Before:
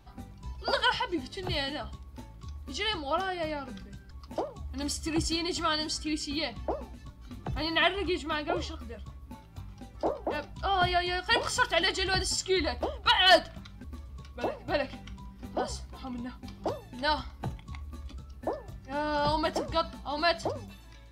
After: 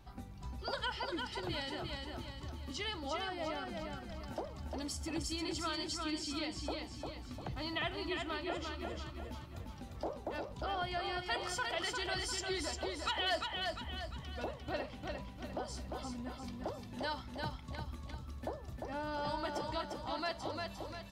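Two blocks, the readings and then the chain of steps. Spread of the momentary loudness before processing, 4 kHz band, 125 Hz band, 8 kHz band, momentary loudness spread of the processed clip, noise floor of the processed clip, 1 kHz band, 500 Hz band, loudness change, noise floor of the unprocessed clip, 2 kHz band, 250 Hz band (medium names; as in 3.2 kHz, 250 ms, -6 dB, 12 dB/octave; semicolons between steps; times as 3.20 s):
20 LU, -9.5 dB, -5.5 dB, -7.5 dB, 9 LU, -50 dBFS, -9.5 dB, -9.0 dB, -10.0 dB, -50 dBFS, -10.0 dB, -7.0 dB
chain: compression 2:1, threshold -42 dBFS, peak gain reduction 14 dB; on a send: feedback delay 350 ms, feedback 46%, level -4 dB; on the sum: trim -1.5 dB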